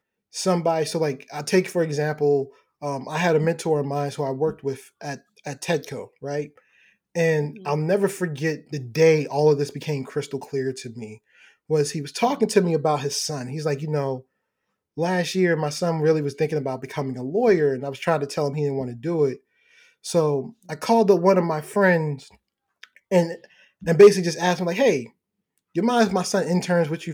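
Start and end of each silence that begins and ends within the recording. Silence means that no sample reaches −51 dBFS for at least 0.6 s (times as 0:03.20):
0:14.22–0:14.97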